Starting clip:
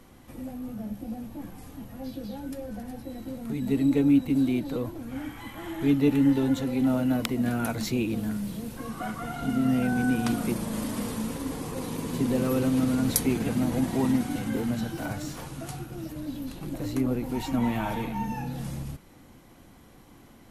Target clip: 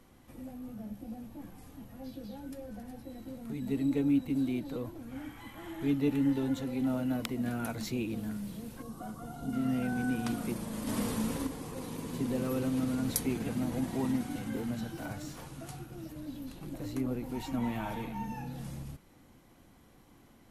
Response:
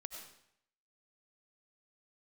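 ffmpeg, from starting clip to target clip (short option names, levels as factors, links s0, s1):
-filter_complex "[0:a]asettb=1/sr,asplit=3[s0][s1][s2];[s0]atrim=end=8.824[s3];[s1]atrim=start=8.82:end=9.53,asetpts=PTS-STARTPTS,afade=t=in:d=0.004:c=qsin,afade=t=out:st=0.706:d=0.004:c=qsin,equalizer=f=2100:t=o:w=1.3:g=-15[s4];[s2]atrim=start=9.526[s5];[s3][s4]acrossfade=d=0.004:c1=hsin:c2=qsin[s6];[s6][s5]acrossfade=d=0.004:c1=qsin:c2=hsin,asettb=1/sr,asplit=3[s7][s8][s9];[s7]atrim=end=10.874[s10];[s8]atrim=start=10.87:end=11.47,asetpts=PTS-STARTPTS,afade=t=in:d=0.004:c=qsin,afade=t=out:st=0.596:d=0.004:c=qsin,acontrast=48[s11];[s9]atrim=start=11.466[s12];[s10][s11]acrossfade=d=0.004:c1=hsin:c2=qsin[s13];[s13][s12]acrossfade=d=0.004:c1=qsin:c2=hsin,volume=0.447"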